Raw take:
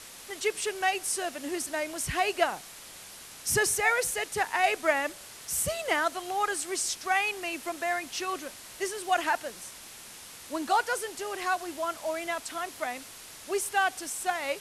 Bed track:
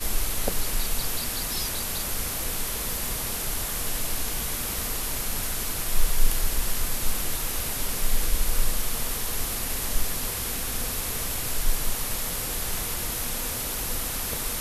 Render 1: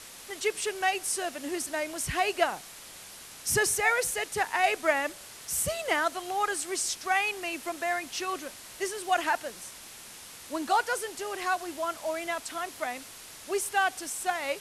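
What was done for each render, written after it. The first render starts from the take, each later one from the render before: no audible change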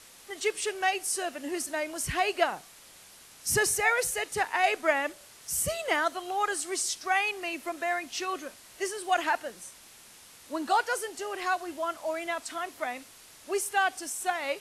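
noise print and reduce 6 dB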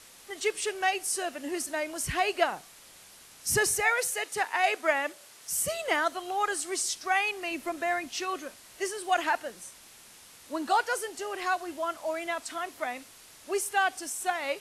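3.82–5.73 s: high-pass 440 Hz -> 210 Hz 6 dB/octave; 7.51–8.09 s: bass shelf 260 Hz +7.5 dB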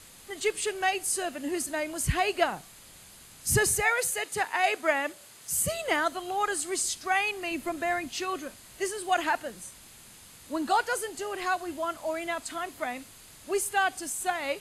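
tone controls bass +10 dB, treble +2 dB; band-stop 5.6 kHz, Q 7.4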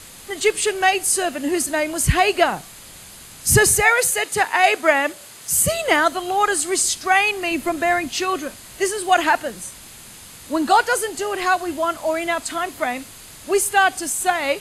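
trim +10 dB; peak limiter -3 dBFS, peak gain reduction 2 dB

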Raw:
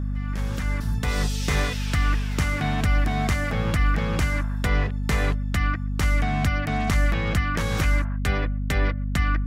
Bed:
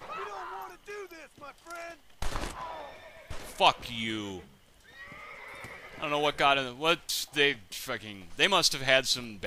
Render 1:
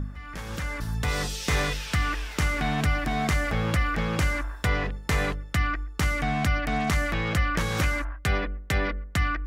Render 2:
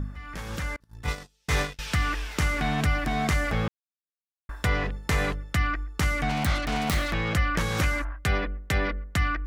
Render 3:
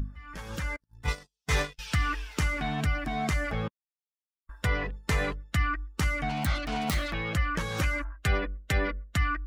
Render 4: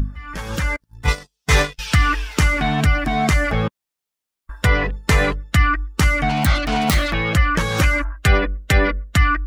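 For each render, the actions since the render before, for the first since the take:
de-hum 50 Hz, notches 11
0.76–1.79 s: gate -26 dBFS, range -36 dB; 3.68–4.49 s: mute; 6.29–7.12 s: self-modulated delay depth 0.33 ms
expander on every frequency bin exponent 1.5; gain riding within 4 dB 0.5 s
trim +11.5 dB

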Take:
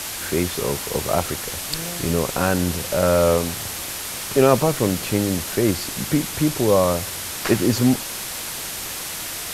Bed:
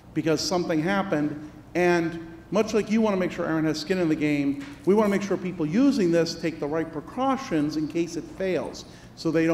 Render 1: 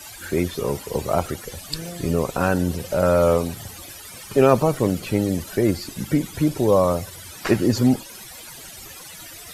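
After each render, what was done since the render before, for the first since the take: noise reduction 16 dB, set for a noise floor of -30 dBFS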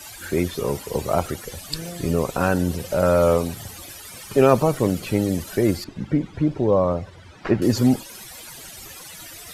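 5.84–7.62 s: tape spacing loss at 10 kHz 28 dB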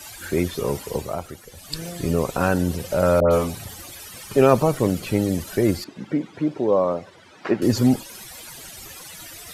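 0.89–1.82 s: dip -9 dB, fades 0.29 s; 3.20–4.14 s: phase dispersion highs, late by 112 ms, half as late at 1.4 kHz; 5.83–7.63 s: high-pass 230 Hz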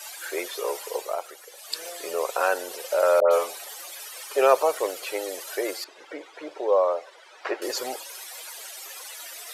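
inverse Chebyshev high-pass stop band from 230 Hz, stop band 40 dB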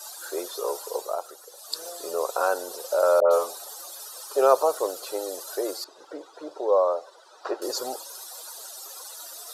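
high-order bell 2.3 kHz -12 dB 1.1 oct; band-stop 2.2 kHz, Q 6.2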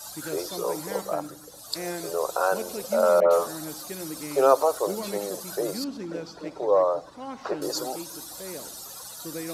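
add bed -13.5 dB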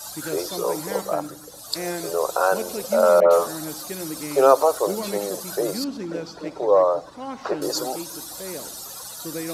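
trim +4 dB; peak limiter -2 dBFS, peak gain reduction 1 dB

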